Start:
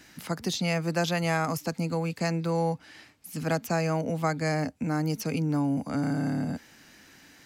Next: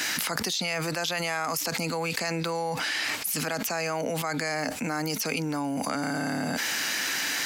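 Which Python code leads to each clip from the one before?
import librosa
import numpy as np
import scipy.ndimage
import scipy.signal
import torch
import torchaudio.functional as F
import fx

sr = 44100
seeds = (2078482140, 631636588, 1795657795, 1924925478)

y = fx.highpass(x, sr, hz=1200.0, slope=6)
y = fx.env_flatten(y, sr, amount_pct=100)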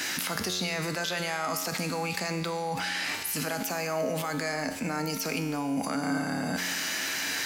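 y = fx.low_shelf(x, sr, hz=470.0, db=3.0)
y = fx.comb_fb(y, sr, f0_hz=91.0, decay_s=1.5, harmonics='all', damping=0.0, mix_pct=80)
y = y * 10.0 ** (9.0 / 20.0)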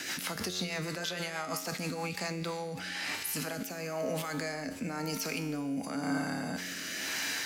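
y = fx.rotary_switch(x, sr, hz=6.3, then_hz=1.0, switch_at_s=1.86)
y = y * 10.0 ** (-2.5 / 20.0)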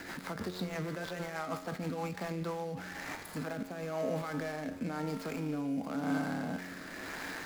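y = scipy.signal.medfilt(x, 15)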